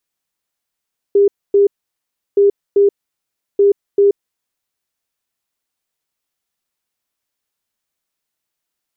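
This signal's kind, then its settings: beep pattern sine 402 Hz, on 0.13 s, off 0.26 s, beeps 2, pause 0.70 s, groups 3, -7 dBFS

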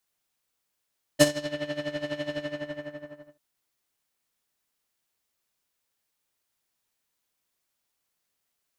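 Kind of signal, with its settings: synth patch with tremolo D4, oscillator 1 triangle, oscillator 2 square, interval +12 st, oscillator 2 level 0 dB, sub -10 dB, noise -1.5 dB, filter lowpass, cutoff 1.2 kHz, Q 1.1, filter envelope 3 oct, filter decay 0.36 s, filter sustain 45%, attack 46 ms, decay 0.05 s, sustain -20 dB, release 1.03 s, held 1.16 s, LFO 12 Hz, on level 14 dB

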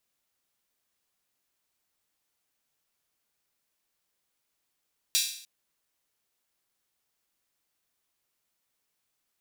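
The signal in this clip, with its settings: open hi-hat length 0.30 s, high-pass 3.6 kHz, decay 0.60 s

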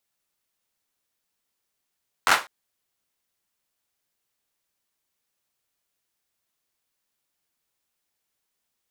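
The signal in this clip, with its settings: hand clap length 0.20 s, bursts 5, apart 11 ms, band 1.2 kHz, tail 0.26 s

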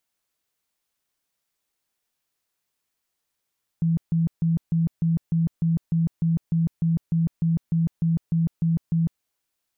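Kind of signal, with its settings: tone bursts 165 Hz, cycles 25, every 0.30 s, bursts 18, -18 dBFS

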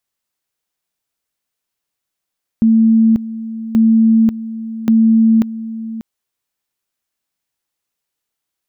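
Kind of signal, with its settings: two-level tone 224 Hz -7 dBFS, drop 15 dB, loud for 0.54 s, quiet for 0.59 s, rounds 3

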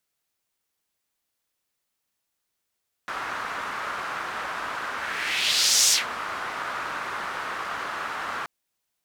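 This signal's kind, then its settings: whoosh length 5.38 s, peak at 2.83 s, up 1.03 s, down 0.16 s, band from 1.3 kHz, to 6.3 kHz, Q 2.2, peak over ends 13.5 dB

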